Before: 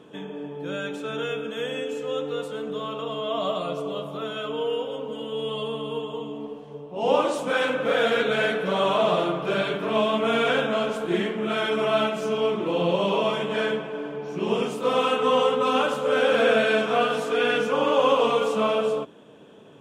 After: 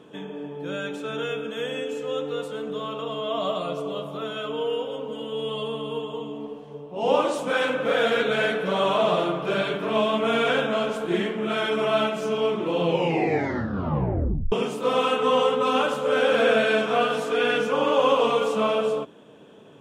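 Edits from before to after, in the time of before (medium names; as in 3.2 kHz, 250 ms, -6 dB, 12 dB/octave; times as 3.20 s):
12.84 s: tape stop 1.68 s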